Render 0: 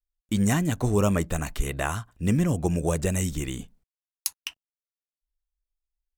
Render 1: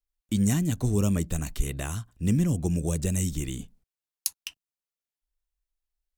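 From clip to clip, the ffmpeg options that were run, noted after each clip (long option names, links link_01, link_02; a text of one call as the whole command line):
ffmpeg -i in.wav -filter_complex "[0:a]acrossover=split=350|3000[link_01][link_02][link_03];[link_02]acompressor=threshold=-60dB:ratio=1.5[link_04];[link_01][link_04][link_03]amix=inputs=3:normalize=0" out.wav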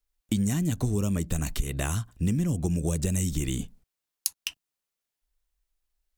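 ffmpeg -i in.wav -af "acompressor=threshold=-29dB:ratio=6,volume=6dB" out.wav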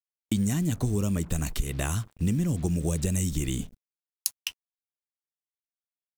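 ffmpeg -i in.wav -af "acrusher=bits=7:mix=0:aa=0.5" out.wav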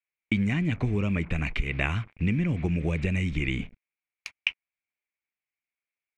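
ffmpeg -i in.wav -af "lowpass=frequency=2300:width_type=q:width=7.7" out.wav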